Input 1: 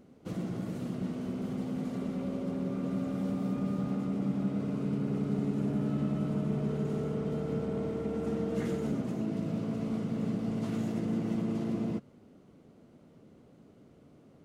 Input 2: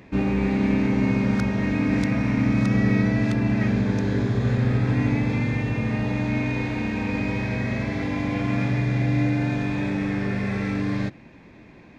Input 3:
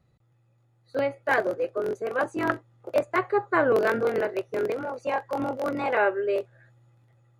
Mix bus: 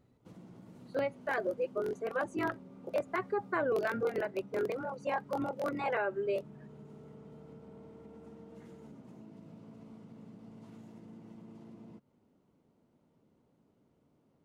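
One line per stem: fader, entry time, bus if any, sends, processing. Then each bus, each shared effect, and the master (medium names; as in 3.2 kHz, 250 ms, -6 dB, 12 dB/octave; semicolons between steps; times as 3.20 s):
-13.5 dB, 0.00 s, bus A, no send, peaking EQ 920 Hz +9 dB 0.25 oct
mute
-5.0 dB, 0.00 s, no bus, no send, reverb removal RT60 1 s
bus A: 0.0 dB, compression 3:1, threshold -50 dBFS, peak gain reduction 8.5 dB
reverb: none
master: peak limiter -24 dBFS, peak gain reduction 8.5 dB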